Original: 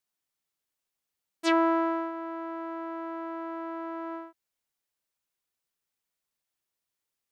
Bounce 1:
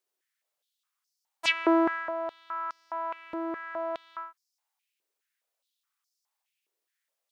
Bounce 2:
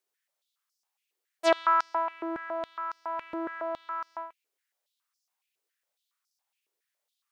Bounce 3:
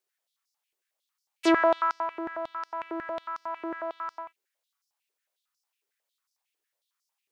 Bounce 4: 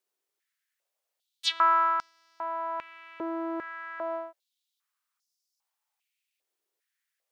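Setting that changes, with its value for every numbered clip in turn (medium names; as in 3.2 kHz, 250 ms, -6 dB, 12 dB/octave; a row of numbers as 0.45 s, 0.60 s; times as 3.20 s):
step-sequenced high-pass, rate: 4.8 Hz, 7.2 Hz, 11 Hz, 2.5 Hz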